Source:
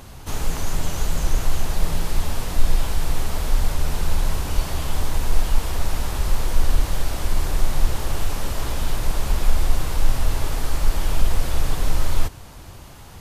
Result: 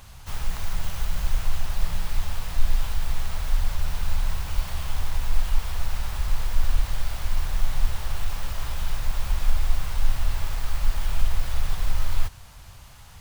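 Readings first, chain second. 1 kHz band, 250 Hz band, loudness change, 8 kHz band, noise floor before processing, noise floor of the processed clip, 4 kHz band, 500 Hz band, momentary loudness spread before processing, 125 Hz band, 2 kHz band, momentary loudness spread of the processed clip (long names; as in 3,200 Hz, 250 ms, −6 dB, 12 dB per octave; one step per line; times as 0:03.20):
−6.5 dB, −11.5 dB, −4.5 dB, −7.5 dB, −40 dBFS, −44 dBFS, −5.0 dB, −11.5 dB, 3 LU, −4.5 dB, −4.0 dB, 4 LU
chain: stylus tracing distortion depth 0.15 ms
parametric band 330 Hz −14 dB 1.7 octaves
level −3 dB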